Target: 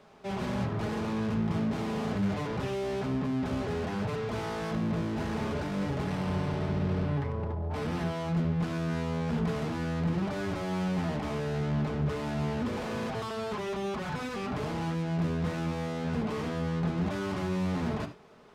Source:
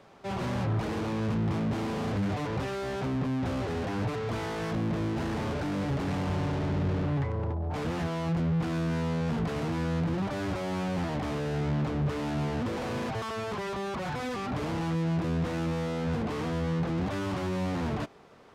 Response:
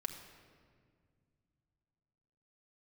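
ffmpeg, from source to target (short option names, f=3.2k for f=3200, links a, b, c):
-filter_complex "[0:a]asettb=1/sr,asplit=3[a][b][c];[a]atrim=end=6.054[d];[b]atrim=start=6.05:end=8.16,asetpts=PTS-STARTPTS,afade=t=in:d=0.004:c=qsin,afade=t=out:st=2.106:d=0.004:c=qsin,bandreject=f=6.8k:w=11[e];[c]atrim=start=8.156[f];[d][e]acrossfade=d=0.004:c1=hsin:c2=qsin[g];[g][f]acrossfade=d=0.004:c1=qsin:c2=hsin[h];[1:a]atrim=start_sample=2205,atrim=end_sample=4410[i];[h][i]afir=irnorm=-1:irlink=0"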